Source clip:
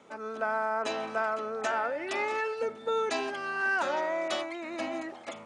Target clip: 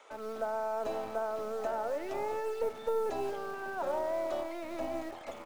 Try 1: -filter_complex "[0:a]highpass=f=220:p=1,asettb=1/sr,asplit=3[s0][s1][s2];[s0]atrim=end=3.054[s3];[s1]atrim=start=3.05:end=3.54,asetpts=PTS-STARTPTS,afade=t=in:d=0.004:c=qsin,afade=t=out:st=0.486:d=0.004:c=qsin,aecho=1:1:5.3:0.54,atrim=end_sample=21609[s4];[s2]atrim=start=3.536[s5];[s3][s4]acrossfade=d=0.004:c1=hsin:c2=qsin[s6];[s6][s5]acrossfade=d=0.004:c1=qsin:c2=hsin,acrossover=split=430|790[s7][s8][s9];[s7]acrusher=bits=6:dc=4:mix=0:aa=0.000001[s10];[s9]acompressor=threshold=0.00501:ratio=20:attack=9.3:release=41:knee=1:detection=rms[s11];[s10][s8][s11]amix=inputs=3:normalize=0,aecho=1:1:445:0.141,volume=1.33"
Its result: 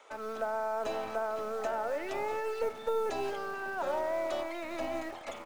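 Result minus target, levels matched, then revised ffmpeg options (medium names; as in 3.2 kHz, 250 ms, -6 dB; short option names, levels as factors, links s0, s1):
compression: peak gain reduction -7 dB
-filter_complex "[0:a]highpass=f=220:p=1,asettb=1/sr,asplit=3[s0][s1][s2];[s0]atrim=end=3.054[s3];[s1]atrim=start=3.05:end=3.54,asetpts=PTS-STARTPTS,afade=t=in:d=0.004:c=qsin,afade=t=out:st=0.486:d=0.004:c=qsin,aecho=1:1:5.3:0.54,atrim=end_sample=21609[s4];[s2]atrim=start=3.536[s5];[s3][s4]acrossfade=d=0.004:c1=hsin:c2=qsin[s6];[s6][s5]acrossfade=d=0.004:c1=qsin:c2=hsin,acrossover=split=430|790[s7][s8][s9];[s7]acrusher=bits=6:dc=4:mix=0:aa=0.000001[s10];[s9]acompressor=threshold=0.00211:ratio=20:attack=9.3:release=41:knee=1:detection=rms[s11];[s10][s8][s11]amix=inputs=3:normalize=0,aecho=1:1:445:0.141,volume=1.33"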